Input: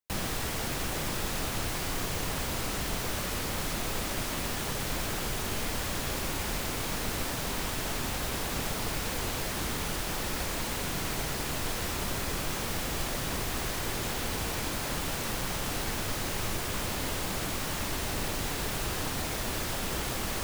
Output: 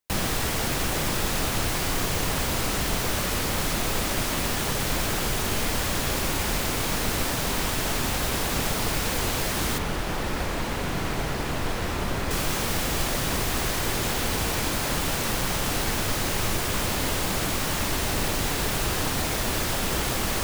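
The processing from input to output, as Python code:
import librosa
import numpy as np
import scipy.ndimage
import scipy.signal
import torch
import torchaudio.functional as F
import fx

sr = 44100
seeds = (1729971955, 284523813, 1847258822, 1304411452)

y = fx.high_shelf(x, sr, hz=3900.0, db=-11.5, at=(9.78, 12.31))
y = y * 10.0 ** (6.5 / 20.0)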